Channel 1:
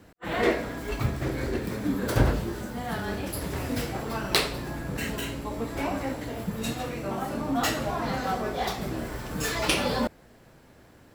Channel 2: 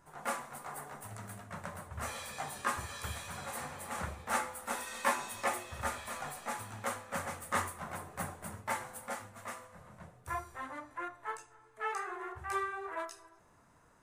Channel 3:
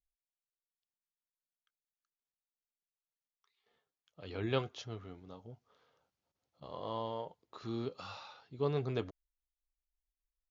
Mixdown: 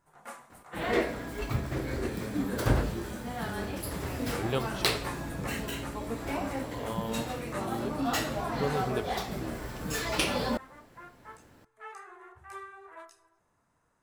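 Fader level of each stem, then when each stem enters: −3.5, −8.5, +2.0 decibels; 0.50, 0.00, 0.00 seconds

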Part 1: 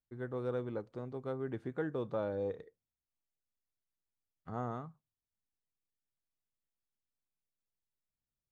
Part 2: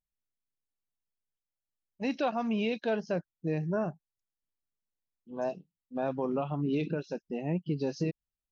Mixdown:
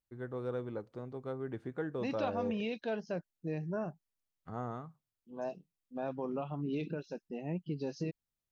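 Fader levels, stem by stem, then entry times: −1.0, −6.0 decibels; 0.00, 0.00 seconds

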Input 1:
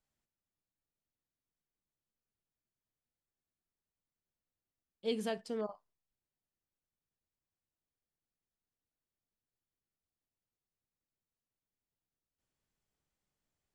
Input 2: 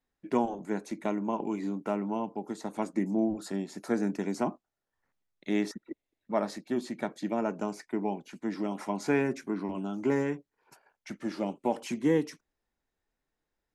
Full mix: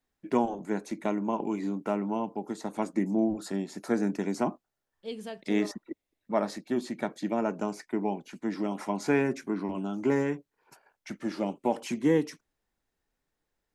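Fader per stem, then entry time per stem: −3.0, +1.5 decibels; 0.00, 0.00 seconds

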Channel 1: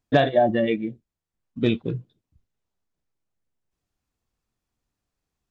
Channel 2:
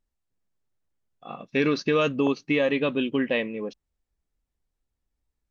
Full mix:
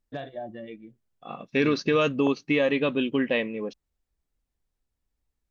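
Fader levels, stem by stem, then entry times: −18.0, 0.0 decibels; 0.00, 0.00 seconds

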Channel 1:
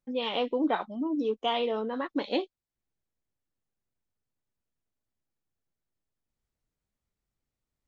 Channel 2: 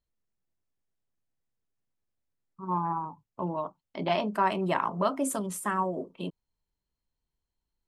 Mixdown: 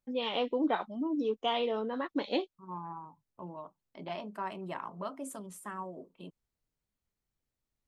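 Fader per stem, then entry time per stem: −2.5, −12.0 decibels; 0.00, 0.00 seconds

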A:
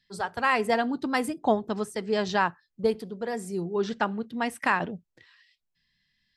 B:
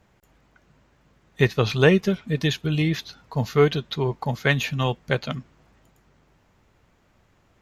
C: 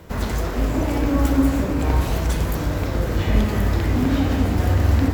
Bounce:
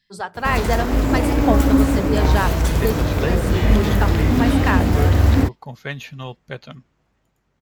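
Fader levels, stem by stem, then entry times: +2.5, −8.5, +3.0 decibels; 0.00, 1.40, 0.35 seconds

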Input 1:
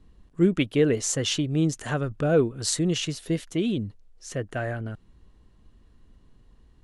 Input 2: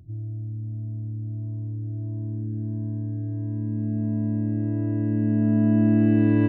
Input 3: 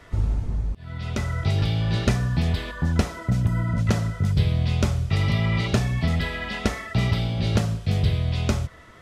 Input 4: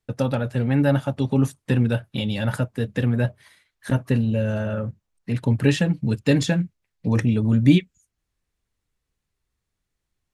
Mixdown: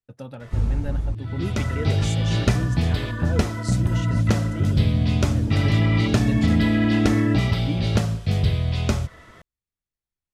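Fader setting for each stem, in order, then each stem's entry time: −10.5, −1.0, +1.0, −14.5 decibels; 1.00, 0.90, 0.40, 0.00 seconds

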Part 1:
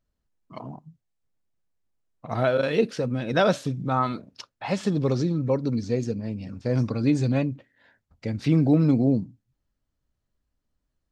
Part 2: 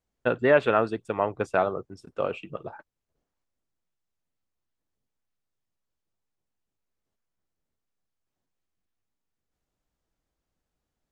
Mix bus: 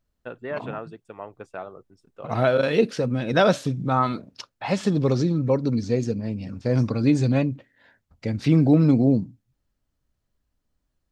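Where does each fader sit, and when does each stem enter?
+2.5, −12.0 decibels; 0.00, 0.00 seconds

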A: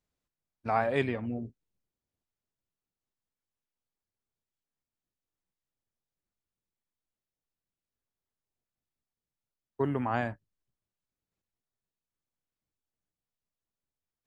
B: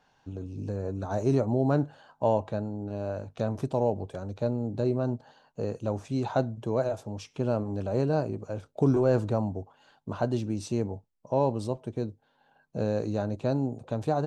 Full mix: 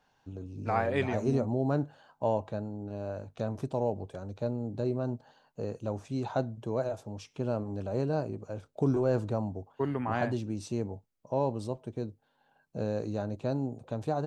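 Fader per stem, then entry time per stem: −1.5, −4.0 decibels; 0.00, 0.00 seconds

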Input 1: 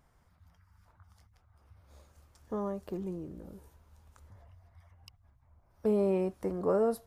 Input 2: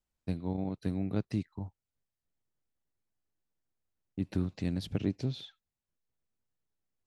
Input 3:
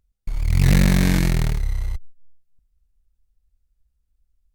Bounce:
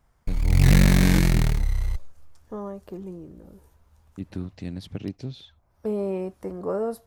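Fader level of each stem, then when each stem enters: +0.5, −1.0, −0.5 decibels; 0.00, 0.00, 0.00 seconds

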